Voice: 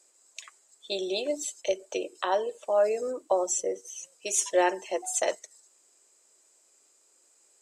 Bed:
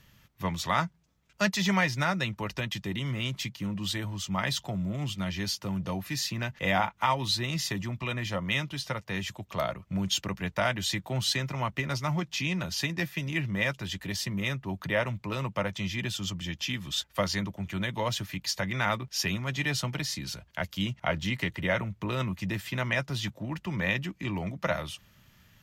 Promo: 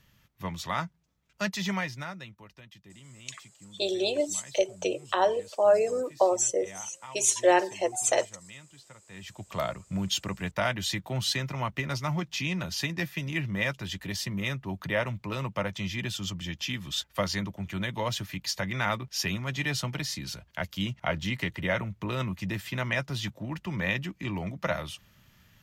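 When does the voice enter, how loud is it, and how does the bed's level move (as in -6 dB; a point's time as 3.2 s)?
2.90 s, +2.5 dB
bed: 1.7 s -4 dB
2.53 s -19 dB
9.03 s -19 dB
9.43 s -0.5 dB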